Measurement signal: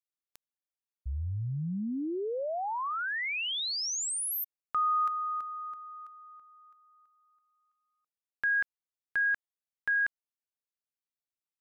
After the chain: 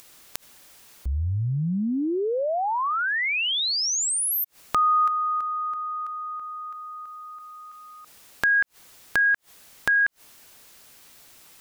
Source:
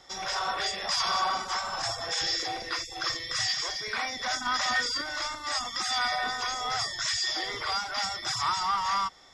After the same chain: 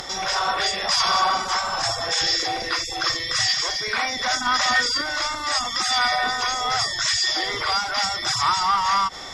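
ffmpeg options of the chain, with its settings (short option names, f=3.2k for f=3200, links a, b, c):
-af "acompressor=mode=upward:threshold=-31dB:ratio=2.5:attack=4:release=73:knee=2.83:detection=peak,volume=7.5dB"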